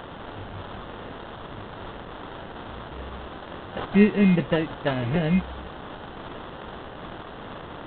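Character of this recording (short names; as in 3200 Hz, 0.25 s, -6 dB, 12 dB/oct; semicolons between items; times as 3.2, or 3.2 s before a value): a quantiser's noise floor 6-bit, dither triangular; phasing stages 4, 2.5 Hz, lowest notch 710–2200 Hz; aliases and images of a low sample rate 2300 Hz, jitter 0%; G.726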